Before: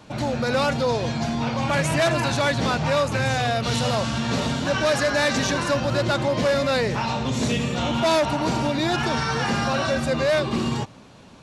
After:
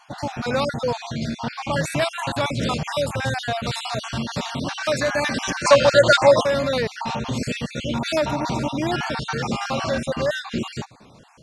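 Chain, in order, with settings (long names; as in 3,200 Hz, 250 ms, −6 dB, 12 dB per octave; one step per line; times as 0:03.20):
time-frequency cells dropped at random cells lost 40%
0:02.63–0:03.12: high-shelf EQ 8,300 Hz +10.5 dB
0:05.65–0:06.43: gain on a spectral selection 460–9,900 Hz +11 dB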